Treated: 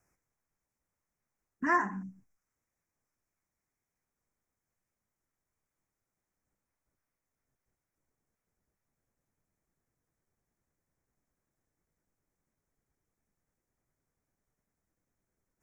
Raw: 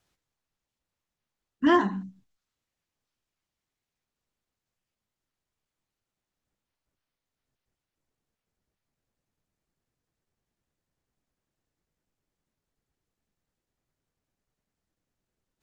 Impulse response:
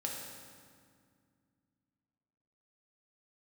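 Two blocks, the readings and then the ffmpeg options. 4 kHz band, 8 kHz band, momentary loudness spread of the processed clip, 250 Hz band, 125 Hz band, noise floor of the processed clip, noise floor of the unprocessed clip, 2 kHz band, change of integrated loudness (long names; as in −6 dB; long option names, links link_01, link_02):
below −20 dB, can't be measured, 16 LU, −12.0 dB, −7.0 dB, below −85 dBFS, below −85 dBFS, −0.5 dB, −6.5 dB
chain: -filter_complex "[0:a]acrossover=split=870[link_01][link_02];[link_01]acompressor=threshold=-34dB:ratio=6[link_03];[link_03][link_02]amix=inputs=2:normalize=0,asuperstop=centerf=3600:order=8:qfactor=1.2"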